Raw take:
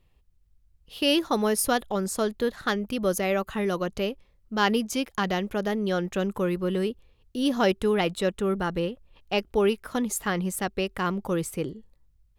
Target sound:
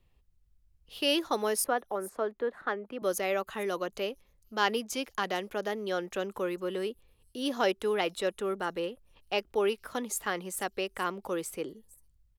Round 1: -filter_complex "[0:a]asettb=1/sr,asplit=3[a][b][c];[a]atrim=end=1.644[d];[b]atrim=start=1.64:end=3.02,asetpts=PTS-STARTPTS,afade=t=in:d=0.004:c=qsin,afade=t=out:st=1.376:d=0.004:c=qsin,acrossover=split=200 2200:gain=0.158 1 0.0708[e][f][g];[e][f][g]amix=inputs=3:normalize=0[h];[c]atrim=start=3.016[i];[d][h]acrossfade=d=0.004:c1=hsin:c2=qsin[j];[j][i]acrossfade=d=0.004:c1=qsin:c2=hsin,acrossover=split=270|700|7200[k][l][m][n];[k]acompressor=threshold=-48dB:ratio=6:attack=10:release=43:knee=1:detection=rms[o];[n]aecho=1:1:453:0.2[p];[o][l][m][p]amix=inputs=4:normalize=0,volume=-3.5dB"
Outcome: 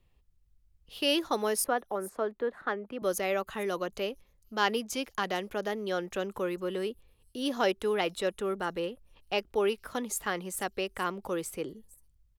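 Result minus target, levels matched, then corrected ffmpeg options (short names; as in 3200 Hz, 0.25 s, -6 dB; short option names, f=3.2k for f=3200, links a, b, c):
compressor: peak gain reduction -6 dB
-filter_complex "[0:a]asettb=1/sr,asplit=3[a][b][c];[a]atrim=end=1.644[d];[b]atrim=start=1.64:end=3.02,asetpts=PTS-STARTPTS,afade=t=in:d=0.004:c=qsin,afade=t=out:st=1.376:d=0.004:c=qsin,acrossover=split=200 2200:gain=0.158 1 0.0708[e][f][g];[e][f][g]amix=inputs=3:normalize=0[h];[c]atrim=start=3.016[i];[d][h]acrossfade=d=0.004:c1=hsin:c2=qsin[j];[j][i]acrossfade=d=0.004:c1=qsin:c2=hsin,acrossover=split=270|700|7200[k][l][m][n];[k]acompressor=threshold=-55.5dB:ratio=6:attack=10:release=43:knee=1:detection=rms[o];[n]aecho=1:1:453:0.2[p];[o][l][m][p]amix=inputs=4:normalize=0,volume=-3.5dB"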